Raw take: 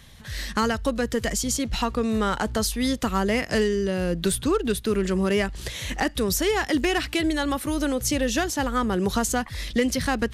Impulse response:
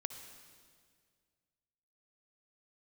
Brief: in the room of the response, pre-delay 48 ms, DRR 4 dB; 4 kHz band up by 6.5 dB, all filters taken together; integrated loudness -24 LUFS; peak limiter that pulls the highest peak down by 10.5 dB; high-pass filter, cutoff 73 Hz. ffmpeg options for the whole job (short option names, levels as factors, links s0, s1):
-filter_complex "[0:a]highpass=73,equalizer=f=4000:t=o:g=8.5,alimiter=limit=0.141:level=0:latency=1,asplit=2[s0][s1];[1:a]atrim=start_sample=2205,adelay=48[s2];[s1][s2]afir=irnorm=-1:irlink=0,volume=0.75[s3];[s0][s3]amix=inputs=2:normalize=0,volume=1.12"